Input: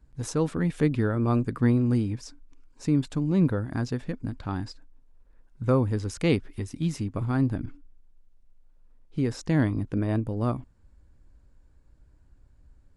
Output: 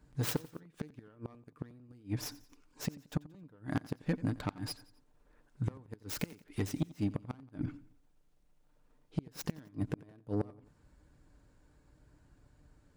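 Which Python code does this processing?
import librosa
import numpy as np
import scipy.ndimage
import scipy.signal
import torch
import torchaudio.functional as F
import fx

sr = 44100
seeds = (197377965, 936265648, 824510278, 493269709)

y = fx.tracing_dist(x, sr, depth_ms=0.22)
y = fx.highpass(y, sr, hz=140.0, slope=6)
y = y + 0.32 * np.pad(y, (int(6.7 * sr / 1000.0), 0))[:len(y)]
y = fx.gate_flip(y, sr, shuts_db=-20.0, range_db=-34)
y = 10.0 ** (-25.5 / 20.0) * np.tanh(y / 10.0 ** (-25.5 / 20.0))
y = fx.echo_feedback(y, sr, ms=89, feedback_pct=44, wet_db=-19.5)
y = F.gain(torch.from_numpy(y), 3.0).numpy()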